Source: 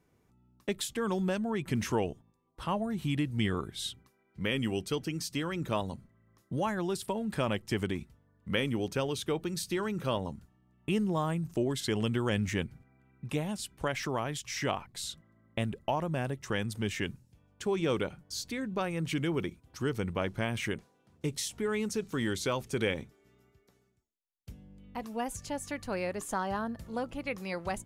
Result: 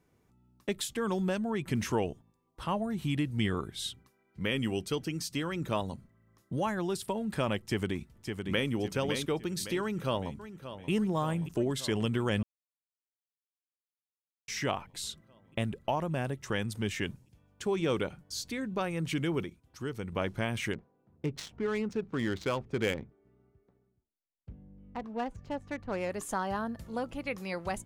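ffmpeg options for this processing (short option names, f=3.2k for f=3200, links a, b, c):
-filter_complex "[0:a]asplit=2[a][b];[b]afade=t=in:st=7.59:d=0.01,afade=t=out:st=8.69:d=0.01,aecho=0:1:560|1120|1680|2240|2800:0.530884|0.212354|0.0849415|0.0339766|0.0135906[c];[a][c]amix=inputs=2:normalize=0,asplit=2[d][e];[e]afade=t=in:st=9.81:d=0.01,afade=t=out:st=10.9:d=0.01,aecho=0:1:580|1160|1740|2320|2900|3480|4060|4640|5220|5800|6380|6960:0.251189|0.188391|0.141294|0.10597|0.0794777|0.0596082|0.0447062|0.0335296|0.0251472|0.0188604|0.0141453|0.010609[f];[d][f]amix=inputs=2:normalize=0,asettb=1/sr,asplit=3[g][h][i];[g]atrim=end=20.734[j];[h]atrim=start=20.73:end=26.1,asetpts=PTS-STARTPTS,afade=t=in:d=0.004:c=qsin,afade=t=out:st=5.366:d=0.004:c=qsin,adynamicsmooth=sensitivity=7.5:basefreq=1.1k[k];[i]atrim=start=26.096[l];[j][k]acrossfade=d=0.004:c1=hsin:c2=qsin[m];[m][l]acrossfade=d=0.004:c1=qsin:c2=hsin,asplit=5[n][o][p][q][r];[n]atrim=end=12.43,asetpts=PTS-STARTPTS,afade=t=out:st=12.426:d=0.004:c=hsin[s];[o]atrim=start=12.43:end=14.48,asetpts=PTS-STARTPTS,volume=0[t];[p]atrim=start=14.48:end=19.442,asetpts=PTS-STARTPTS,afade=t=in:d=0.004:c=hsin[u];[q]atrim=start=19.438:end=20.122,asetpts=PTS-STARTPTS,volume=-5dB[v];[r]atrim=start=20.118[w];[s][t][u]concat=n=3:v=0:a=1[x];[x][v]acrossfade=d=0.004:c1=hsin:c2=hsin[y];[y][w]acrossfade=d=0.004:c1=hsin:c2=hsin"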